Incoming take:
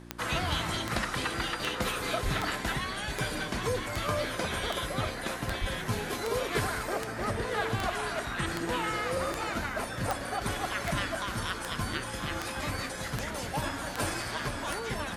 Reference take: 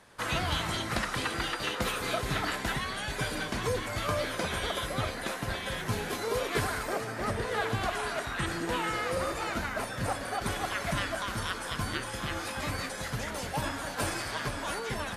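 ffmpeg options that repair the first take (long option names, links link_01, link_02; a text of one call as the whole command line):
ffmpeg -i in.wav -filter_complex "[0:a]adeclick=threshold=4,bandreject=frequency=58.8:width_type=h:width=4,bandreject=frequency=117.6:width_type=h:width=4,bandreject=frequency=176.4:width_type=h:width=4,bandreject=frequency=235.2:width_type=h:width=4,bandreject=frequency=294:width_type=h:width=4,bandreject=frequency=352.8:width_type=h:width=4,asplit=3[link_01][link_02][link_03];[link_01]afade=type=out:start_time=2.24:duration=0.02[link_04];[link_02]highpass=frequency=140:width=0.5412,highpass=frequency=140:width=1.3066,afade=type=in:start_time=2.24:duration=0.02,afade=type=out:start_time=2.36:duration=0.02[link_05];[link_03]afade=type=in:start_time=2.36:duration=0.02[link_06];[link_04][link_05][link_06]amix=inputs=3:normalize=0,asplit=3[link_07][link_08][link_09];[link_07]afade=type=out:start_time=5.6:duration=0.02[link_10];[link_08]highpass=frequency=140:width=0.5412,highpass=frequency=140:width=1.3066,afade=type=in:start_time=5.6:duration=0.02,afade=type=out:start_time=5.72:duration=0.02[link_11];[link_09]afade=type=in:start_time=5.72:duration=0.02[link_12];[link_10][link_11][link_12]amix=inputs=3:normalize=0" out.wav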